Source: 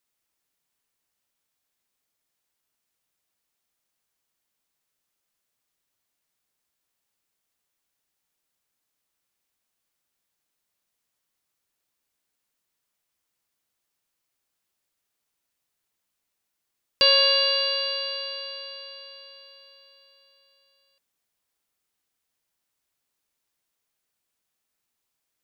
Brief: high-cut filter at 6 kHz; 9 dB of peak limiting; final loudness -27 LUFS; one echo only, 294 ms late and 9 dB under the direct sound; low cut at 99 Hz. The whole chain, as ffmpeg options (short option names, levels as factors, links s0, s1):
-af "highpass=99,lowpass=6000,alimiter=limit=0.158:level=0:latency=1,aecho=1:1:294:0.355,volume=0.708"